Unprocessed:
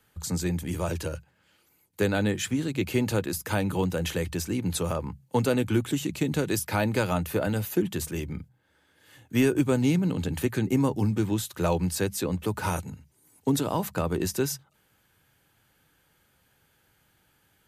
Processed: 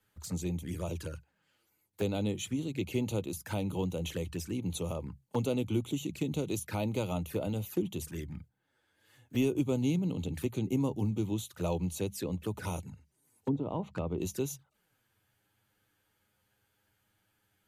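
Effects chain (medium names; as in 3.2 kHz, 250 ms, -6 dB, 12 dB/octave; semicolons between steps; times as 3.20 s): touch-sensitive flanger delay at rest 10.1 ms, full sweep at -25.5 dBFS; 12.87–14.18 s: low-pass that closes with the level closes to 720 Hz, closed at -20.5 dBFS; trim -6 dB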